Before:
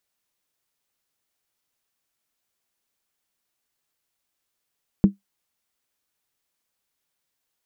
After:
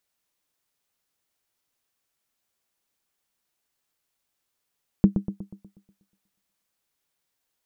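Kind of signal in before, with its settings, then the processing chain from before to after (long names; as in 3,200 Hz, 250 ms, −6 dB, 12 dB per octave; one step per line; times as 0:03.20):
struck skin, lowest mode 198 Hz, decay 0.14 s, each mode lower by 11 dB, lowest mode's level −6 dB
on a send: bucket-brigade delay 121 ms, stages 1,024, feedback 50%, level −8.5 dB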